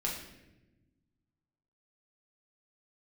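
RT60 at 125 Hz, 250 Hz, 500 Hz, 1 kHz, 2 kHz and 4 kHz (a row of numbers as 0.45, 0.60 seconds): 2.1, 1.8, 1.3, 0.80, 0.95, 0.75 seconds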